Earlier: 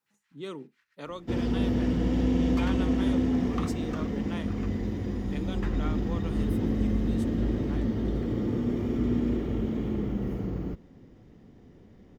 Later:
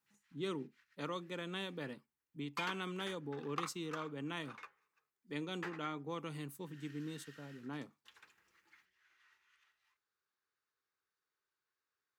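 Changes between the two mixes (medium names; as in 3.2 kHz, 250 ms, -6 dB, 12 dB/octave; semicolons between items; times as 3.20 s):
first sound: muted; master: add peaking EQ 620 Hz -5.5 dB 0.92 oct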